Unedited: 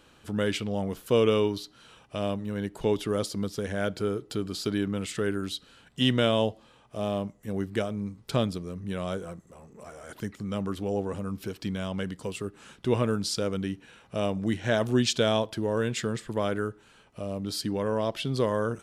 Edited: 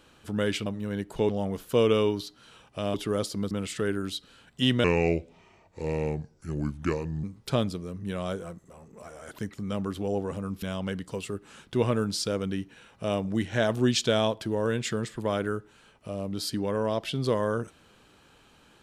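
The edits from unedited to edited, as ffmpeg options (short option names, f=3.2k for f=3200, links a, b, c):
-filter_complex "[0:a]asplit=8[a][b][c][d][e][f][g][h];[a]atrim=end=0.662[i];[b]atrim=start=2.308:end=2.942[j];[c]atrim=start=0.658:end=2.312[k];[d]atrim=start=2.938:end=3.512[l];[e]atrim=start=4.898:end=6.234[m];[f]atrim=start=6.23:end=8.05,asetpts=PTS-STARTPTS,asetrate=33516,aresample=44100[n];[g]atrim=start=8.046:end=11.442[o];[h]atrim=start=11.738[p];[i][j]acrossfade=d=0.004:c1=hsin:c2=hsin[q];[q][k]acrossfade=d=0.004:c1=hsin:c2=hsin[r];[r][l]acrossfade=d=0.004:c1=hsin:c2=hsin[s];[s][m]acrossfade=d=0.004:c1=hsin:c2=hsin[t];[t][n]acrossfade=d=0.004:c1=hsin:c2=hsin[u];[u][o]acrossfade=d=0.004:c1=hsin:c2=hsin[v];[v][p]acrossfade=d=0.004:c1=hsin:c2=hsin"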